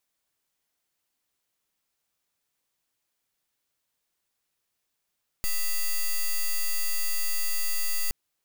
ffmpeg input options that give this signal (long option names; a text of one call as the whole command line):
ffmpeg -f lavfi -i "aevalsrc='0.0596*(2*lt(mod(4680*t,1),0.05)-1)':duration=2.67:sample_rate=44100" out.wav